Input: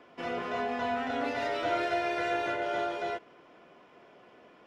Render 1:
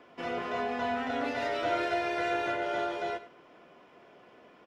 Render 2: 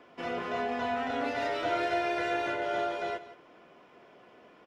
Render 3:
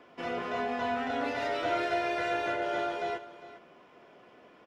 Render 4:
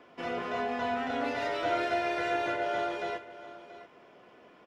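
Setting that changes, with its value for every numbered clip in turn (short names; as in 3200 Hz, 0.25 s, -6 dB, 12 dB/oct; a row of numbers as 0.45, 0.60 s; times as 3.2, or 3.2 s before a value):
echo, time: 0.101, 0.172, 0.403, 0.683 s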